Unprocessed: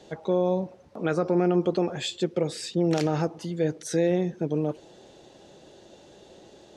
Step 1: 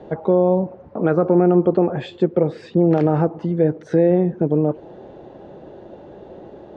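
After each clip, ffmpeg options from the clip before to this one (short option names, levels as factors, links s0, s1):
-filter_complex "[0:a]lowpass=1200,asplit=2[s0][s1];[s1]acompressor=threshold=0.0282:ratio=6,volume=1[s2];[s0][s2]amix=inputs=2:normalize=0,volume=2"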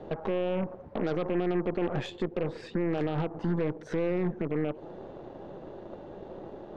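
-af "alimiter=limit=0.141:level=0:latency=1:release=136,aeval=exprs='0.141*(cos(1*acos(clip(val(0)/0.141,-1,1)))-cos(1*PI/2))+0.0178*(cos(6*acos(clip(val(0)/0.141,-1,1)))-cos(6*PI/2))':c=same,volume=0.631"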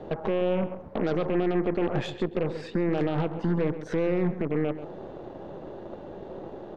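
-filter_complex "[0:a]asplit=2[s0][s1];[s1]adelay=133,lowpass=f=2700:p=1,volume=0.251,asplit=2[s2][s3];[s3]adelay=133,lowpass=f=2700:p=1,volume=0.18[s4];[s0][s2][s4]amix=inputs=3:normalize=0,volume=1.41"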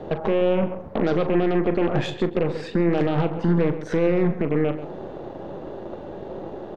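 -filter_complex "[0:a]asplit=2[s0][s1];[s1]adelay=41,volume=0.266[s2];[s0][s2]amix=inputs=2:normalize=0,volume=1.78"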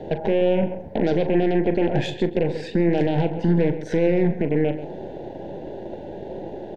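-af "asuperstop=centerf=1200:order=4:qfactor=1.8,volume=1.12"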